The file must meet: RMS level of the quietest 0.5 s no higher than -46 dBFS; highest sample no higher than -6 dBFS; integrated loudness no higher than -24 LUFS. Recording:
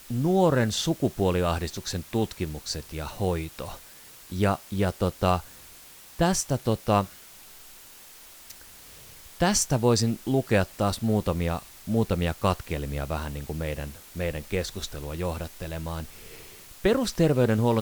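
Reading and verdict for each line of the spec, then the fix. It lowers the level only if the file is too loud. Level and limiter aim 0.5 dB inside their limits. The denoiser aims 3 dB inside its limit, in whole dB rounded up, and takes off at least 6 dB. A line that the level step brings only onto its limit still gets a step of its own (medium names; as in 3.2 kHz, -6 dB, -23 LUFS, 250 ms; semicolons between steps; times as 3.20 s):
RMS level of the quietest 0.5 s -48 dBFS: pass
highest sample -8.5 dBFS: pass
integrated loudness -27.0 LUFS: pass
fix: none needed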